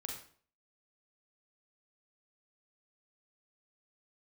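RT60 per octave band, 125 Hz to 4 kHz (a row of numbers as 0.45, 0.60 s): 0.50, 0.50, 0.50, 0.50, 0.45, 0.40 s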